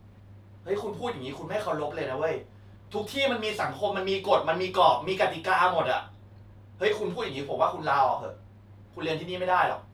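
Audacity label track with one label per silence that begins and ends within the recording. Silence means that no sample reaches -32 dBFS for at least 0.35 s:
2.390000	2.940000	silence
6.010000	6.810000	silence
8.310000	8.980000	silence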